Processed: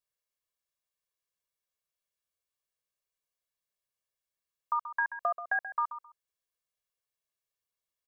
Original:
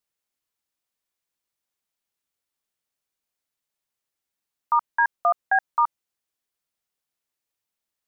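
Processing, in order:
comb filter 1.8 ms, depth 81%
downward compressor 3 to 1, threshold −19 dBFS, peak gain reduction 5.5 dB
repeating echo 132 ms, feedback 18%, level −12 dB
level −8.5 dB

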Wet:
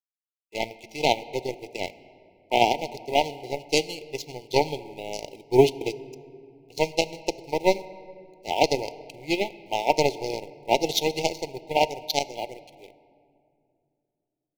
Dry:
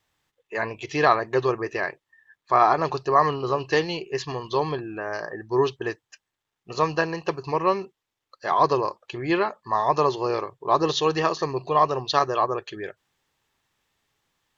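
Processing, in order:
high-shelf EQ 4,100 Hz +10 dB
automatic gain control gain up to 11.5 dB
in parallel at −8 dB: bit reduction 5 bits
on the sum: power curve on the samples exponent 2
linear-phase brick-wall band-stop 940–2,000 Hz
on a send at −16 dB: convolution reverb RT60 2.5 s, pre-delay 6 ms
on the sum: level −1 dB

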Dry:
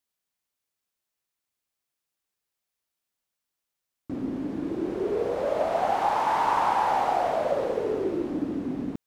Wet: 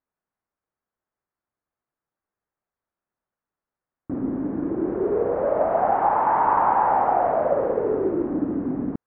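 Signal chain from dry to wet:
low-pass filter 1,600 Hz 24 dB per octave
level +4.5 dB

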